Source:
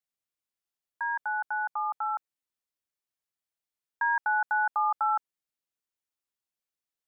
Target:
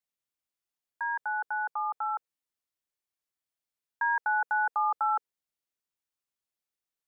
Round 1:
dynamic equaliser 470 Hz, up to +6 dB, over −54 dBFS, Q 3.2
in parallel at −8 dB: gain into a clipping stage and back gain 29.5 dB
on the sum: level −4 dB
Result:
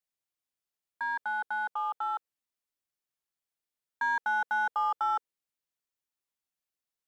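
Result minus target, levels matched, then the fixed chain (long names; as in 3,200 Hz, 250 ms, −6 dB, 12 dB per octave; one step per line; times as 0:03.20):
gain into a clipping stage and back: distortion +35 dB
dynamic equaliser 470 Hz, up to +6 dB, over −54 dBFS, Q 3.2
in parallel at −8 dB: gain into a clipping stage and back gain 19.5 dB
on the sum: level −4 dB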